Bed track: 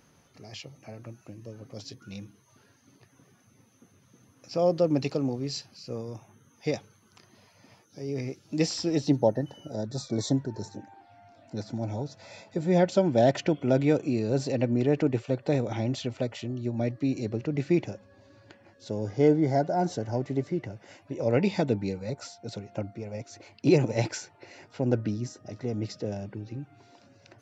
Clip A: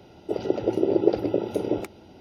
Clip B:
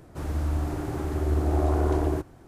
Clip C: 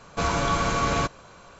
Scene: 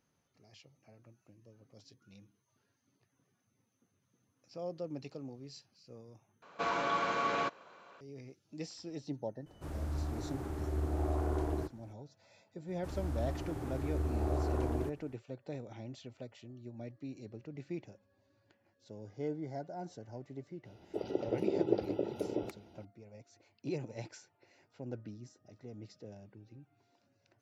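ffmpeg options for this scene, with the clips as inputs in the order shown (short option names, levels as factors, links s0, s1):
-filter_complex "[2:a]asplit=2[s0][s1];[0:a]volume=0.141[s2];[3:a]highpass=310,lowpass=3500[s3];[s2]asplit=2[s4][s5];[s4]atrim=end=6.424[s6];[s3]atrim=end=1.59,asetpts=PTS-STARTPTS,volume=0.447[s7];[s5]atrim=start=8.006[s8];[s0]atrim=end=2.47,asetpts=PTS-STARTPTS,volume=0.316,afade=t=in:d=0.004:c=hsin,afade=t=out:st=2.466:d=0.004:c=hsin,adelay=417186S[s9];[s1]atrim=end=2.47,asetpts=PTS-STARTPTS,volume=0.316,afade=t=in:d=0.004:c=hsin,afade=t=out:st=2.466:d=0.004:c=hsin,adelay=559188S[s10];[1:a]atrim=end=2.2,asetpts=PTS-STARTPTS,volume=0.299,afade=t=in:d=0.004:c=hsin,afade=t=out:st=2.196:d=0.004:c=hsin,adelay=20650[s11];[s6][s7]acrossfade=d=0.004:c1=hsin:c2=hsin[s12];[s12][s8]acrossfade=d=0.004:c1=hsin:c2=hsin[s13];[s13][s9][s10][s11]amix=inputs=4:normalize=0"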